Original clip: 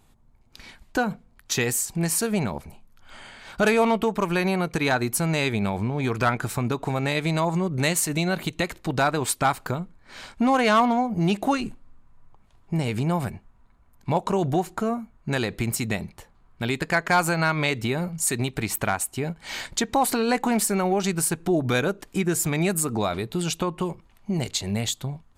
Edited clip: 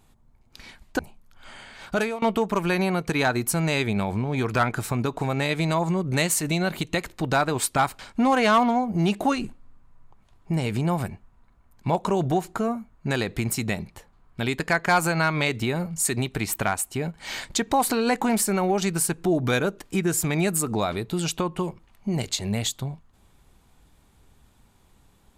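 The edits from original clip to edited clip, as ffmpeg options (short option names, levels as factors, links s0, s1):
-filter_complex "[0:a]asplit=4[s0][s1][s2][s3];[s0]atrim=end=0.992[s4];[s1]atrim=start=2.648:end=3.88,asetpts=PTS-STARTPTS,afade=t=out:st=0.862:d=0.37:silence=0.0707946[s5];[s2]atrim=start=3.88:end=9.652,asetpts=PTS-STARTPTS,afade=t=in:d=0.004:c=hsin:silence=0.0707946[s6];[s3]atrim=start=10.208[s7];[s5][s6]concat=n=2:v=0:a=1[s8];[s4][s8]acrossfade=d=0.004:c1=hsin:c2=hsin[s9];[s9][s7]acrossfade=d=0.004:c1=hsin:c2=hsin"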